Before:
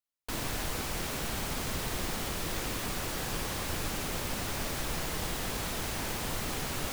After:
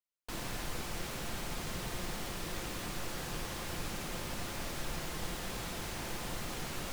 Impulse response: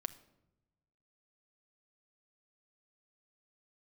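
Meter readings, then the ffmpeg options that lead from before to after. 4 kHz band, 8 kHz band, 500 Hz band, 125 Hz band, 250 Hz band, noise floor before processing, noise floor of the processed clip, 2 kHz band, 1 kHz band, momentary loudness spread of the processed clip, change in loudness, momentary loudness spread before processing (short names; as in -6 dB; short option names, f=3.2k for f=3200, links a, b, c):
-5.5 dB, -6.5 dB, -5.0 dB, -5.0 dB, -4.5 dB, -36 dBFS, -42 dBFS, -5.0 dB, -5.0 dB, 0 LU, -6.0 dB, 0 LU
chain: -filter_complex "[0:a]highshelf=f=12k:g=-5.5[a];[1:a]atrim=start_sample=2205[b];[a][b]afir=irnorm=-1:irlink=0,volume=-3.5dB"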